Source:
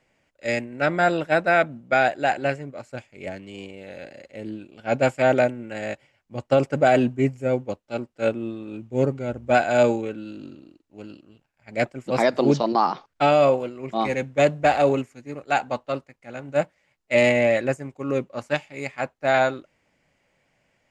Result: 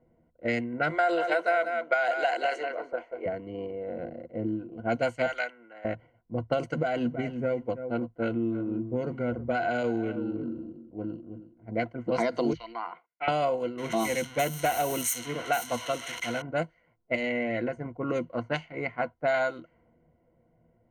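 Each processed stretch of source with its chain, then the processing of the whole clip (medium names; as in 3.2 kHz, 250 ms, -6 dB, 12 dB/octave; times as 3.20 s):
0.90–3.26 s: high-pass 410 Hz 24 dB/octave + transient shaper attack +4 dB, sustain +9 dB + delay 185 ms -10 dB
5.26–5.85 s: high-pass 1.2 kHz + three bands expanded up and down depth 40%
6.69–11.96 s: compression, threshold -20 dBFS + delay 325 ms -14 dB
12.53–13.28 s: resonant low-pass 2.3 kHz, resonance Q 6 + differentiator
13.78–16.42 s: zero-crossing glitches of -18.5 dBFS + Butterworth band-stop 4.6 kHz, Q 5.6 + treble shelf 4.3 kHz +3.5 dB
17.15–17.83 s: compression 16:1, threshold -22 dBFS + Butterworth band-stop 1.2 kHz, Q 5.7 + hum notches 60/120 Hz
whole clip: level-controlled noise filter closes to 530 Hz, open at -17 dBFS; rippled EQ curve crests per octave 1.9, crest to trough 13 dB; compression 3:1, threshold -33 dBFS; trim +4.5 dB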